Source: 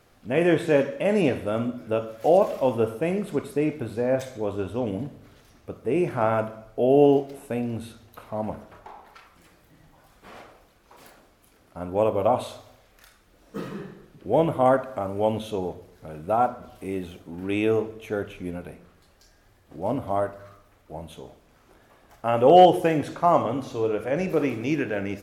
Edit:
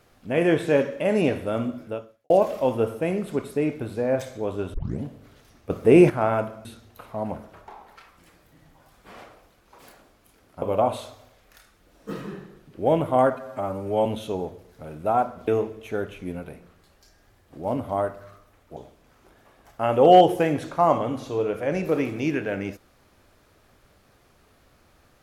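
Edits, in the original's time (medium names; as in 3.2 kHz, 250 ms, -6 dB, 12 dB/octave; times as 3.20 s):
1.79–2.30 s: fade out quadratic
4.74 s: tape start 0.29 s
5.70–6.10 s: gain +10 dB
6.65–7.83 s: delete
11.80–12.09 s: delete
14.82–15.29 s: stretch 1.5×
16.71–17.66 s: delete
20.95–21.21 s: delete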